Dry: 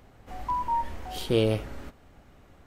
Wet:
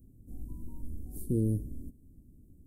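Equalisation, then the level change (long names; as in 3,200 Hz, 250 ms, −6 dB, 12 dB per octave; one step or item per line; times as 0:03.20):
Chebyshev band-stop filter 290–9,800 Hz, order 3
0.0 dB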